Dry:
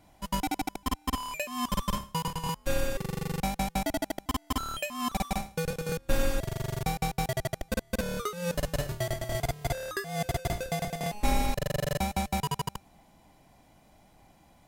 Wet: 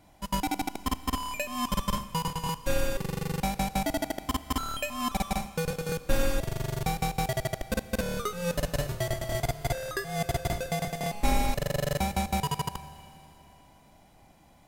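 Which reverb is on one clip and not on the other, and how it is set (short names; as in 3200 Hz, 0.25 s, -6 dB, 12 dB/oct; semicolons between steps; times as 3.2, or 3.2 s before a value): Schroeder reverb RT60 3.2 s, combs from 27 ms, DRR 14 dB; gain +1 dB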